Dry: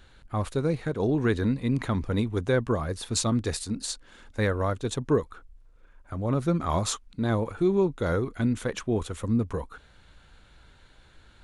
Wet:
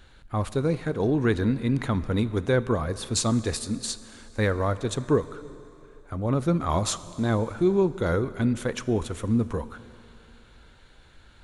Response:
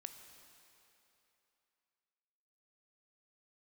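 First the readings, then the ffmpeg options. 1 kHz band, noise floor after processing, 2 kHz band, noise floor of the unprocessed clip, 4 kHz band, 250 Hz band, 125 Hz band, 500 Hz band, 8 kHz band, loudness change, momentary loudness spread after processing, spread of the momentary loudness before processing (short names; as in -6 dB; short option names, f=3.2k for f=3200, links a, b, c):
+1.5 dB, -53 dBFS, +1.5 dB, -56 dBFS, +1.5 dB, +1.5 dB, +1.5 dB, +1.5 dB, +1.5 dB, +1.5 dB, 9 LU, 8 LU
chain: -filter_complex "[0:a]asplit=2[a][b];[1:a]atrim=start_sample=2205[c];[b][c]afir=irnorm=-1:irlink=0,volume=2dB[d];[a][d]amix=inputs=2:normalize=0,volume=-3dB"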